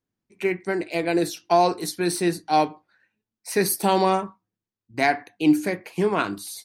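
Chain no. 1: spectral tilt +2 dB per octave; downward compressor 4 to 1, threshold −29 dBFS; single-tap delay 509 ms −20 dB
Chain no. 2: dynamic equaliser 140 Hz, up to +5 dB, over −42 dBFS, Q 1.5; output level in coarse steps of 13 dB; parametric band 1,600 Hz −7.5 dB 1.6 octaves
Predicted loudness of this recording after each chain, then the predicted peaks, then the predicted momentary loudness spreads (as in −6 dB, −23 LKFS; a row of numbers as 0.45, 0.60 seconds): −32.0, −30.0 LKFS; −15.0, −9.0 dBFS; 9, 10 LU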